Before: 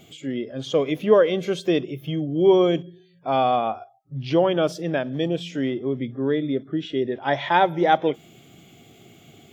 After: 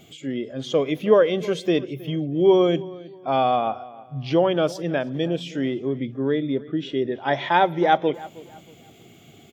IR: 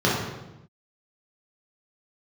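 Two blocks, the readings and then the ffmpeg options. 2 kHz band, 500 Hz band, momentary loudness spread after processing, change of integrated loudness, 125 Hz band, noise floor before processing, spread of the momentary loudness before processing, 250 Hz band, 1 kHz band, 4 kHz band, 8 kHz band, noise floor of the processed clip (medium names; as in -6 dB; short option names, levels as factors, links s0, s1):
0.0 dB, 0.0 dB, 12 LU, 0.0 dB, 0.0 dB, -53 dBFS, 12 LU, 0.0 dB, 0.0 dB, 0.0 dB, no reading, -50 dBFS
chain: -filter_complex "[0:a]asplit=2[s0][s1];[s1]adelay=317,lowpass=f=3500:p=1,volume=0.106,asplit=2[s2][s3];[s3]adelay=317,lowpass=f=3500:p=1,volume=0.33,asplit=2[s4][s5];[s5]adelay=317,lowpass=f=3500:p=1,volume=0.33[s6];[s0][s2][s4][s6]amix=inputs=4:normalize=0"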